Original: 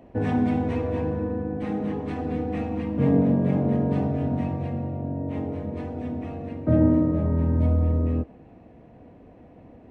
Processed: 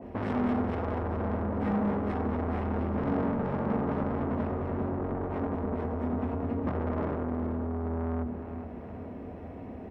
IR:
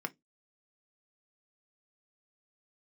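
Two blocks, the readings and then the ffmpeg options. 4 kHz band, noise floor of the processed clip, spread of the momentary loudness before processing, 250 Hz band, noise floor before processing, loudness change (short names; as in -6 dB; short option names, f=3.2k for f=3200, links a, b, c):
n/a, -42 dBFS, 11 LU, -6.5 dB, -50 dBFS, -6.5 dB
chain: -filter_complex "[0:a]equalizer=f=79:t=o:w=1.5:g=13.5,bandreject=f=60:t=h:w=6,bandreject=f=120:t=h:w=6,bandreject=f=180:t=h:w=6,bandreject=f=240:t=h:w=6,alimiter=limit=-14dB:level=0:latency=1:release=70,asoftclip=type=tanh:threshold=-31.5dB,aecho=1:1:416|832|1248|1664|2080|2496:0.335|0.171|0.0871|0.0444|0.0227|0.0116,asplit=2[a][b];[1:a]atrim=start_sample=2205[c];[b][c]afir=irnorm=-1:irlink=0,volume=0.5dB[d];[a][d]amix=inputs=2:normalize=0,adynamicequalizer=threshold=0.00355:dfrequency=1800:dqfactor=0.7:tfrequency=1800:tqfactor=0.7:attack=5:release=100:ratio=0.375:range=3.5:mode=cutabove:tftype=highshelf"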